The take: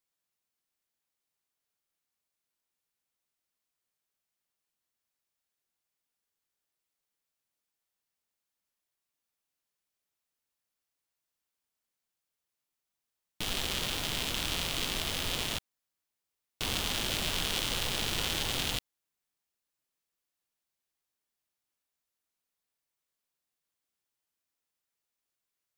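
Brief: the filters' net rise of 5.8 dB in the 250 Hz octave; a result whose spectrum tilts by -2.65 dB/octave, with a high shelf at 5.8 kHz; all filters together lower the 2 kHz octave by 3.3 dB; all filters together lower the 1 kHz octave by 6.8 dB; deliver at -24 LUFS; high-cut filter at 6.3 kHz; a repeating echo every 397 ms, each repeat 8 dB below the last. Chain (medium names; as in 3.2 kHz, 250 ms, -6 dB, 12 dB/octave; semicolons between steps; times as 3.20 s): low-pass 6.3 kHz; peaking EQ 250 Hz +8 dB; peaking EQ 1 kHz -9 dB; peaking EQ 2 kHz -3.5 dB; treble shelf 5.8 kHz +7 dB; feedback delay 397 ms, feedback 40%, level -8 dB; trim +7.5 dB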